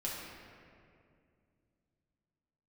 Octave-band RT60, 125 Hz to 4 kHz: 3.7 s, 3.3 s, 2.6 s, 2.1 s, 2.0 s, 1.4 s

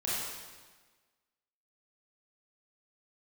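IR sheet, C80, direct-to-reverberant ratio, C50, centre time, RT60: 0.0 dB, -8.5 dB, -3.0 dB, 108 ms, 1.4 s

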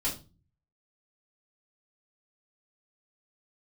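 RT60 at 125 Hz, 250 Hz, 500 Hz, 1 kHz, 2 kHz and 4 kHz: 0.80 s, 0.55 s, 0.35 s, 0.30 s, 0.25 s, 0.30 s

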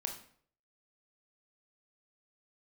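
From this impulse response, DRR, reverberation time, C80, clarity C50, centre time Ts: 3.0 dB, 0.55 s, 12.0 dB, 8.0 dB, 19 ms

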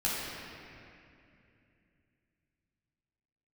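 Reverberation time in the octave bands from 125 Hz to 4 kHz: 3.9 s, 3.6 s, 2.9 s, 2.4 s, 2.8 s, 1.9 s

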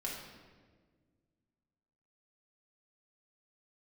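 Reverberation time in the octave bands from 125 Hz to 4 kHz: 2.5 s, 2.4 s, 1.9 s, 1.3 s, 1.3 s, 1.0 s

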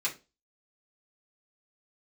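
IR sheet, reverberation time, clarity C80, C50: 0.30 s, 22.0 dB, 14.0 dB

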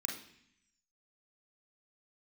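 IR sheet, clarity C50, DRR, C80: 5.5 dB, -0.5 dB, 10.0 dB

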